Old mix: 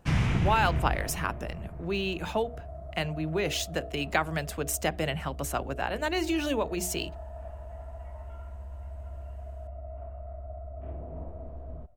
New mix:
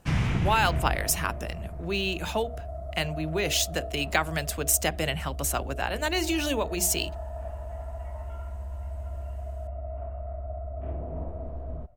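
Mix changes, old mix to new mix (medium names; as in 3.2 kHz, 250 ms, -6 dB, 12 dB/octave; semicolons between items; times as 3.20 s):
speech: add treble shelf 3.1 kHz +9.5 dB; second sound +5.0 dB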